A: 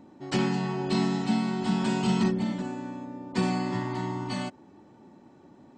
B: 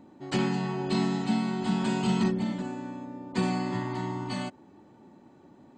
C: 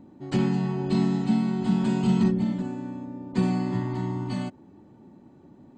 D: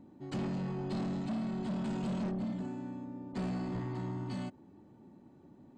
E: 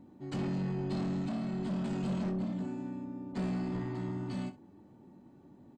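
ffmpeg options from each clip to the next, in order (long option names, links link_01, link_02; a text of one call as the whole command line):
ffmpeg -i in.wav -af "bandreject=frequency=5500:width=8.5,volume=-1dB" out.wav
ffmpeg -i in.wav -af "lowshelf=frequency=360:gain=11.5,volume=-4dB" out.wav
ffmpeg -i in.wav -af "asoftclip=type=tanh:threshold=-26dB,volume=-6dB" out.wav
ffmpeg -i in.wav -af "aecho=1:1:21|64:0.355|0.158" out.wav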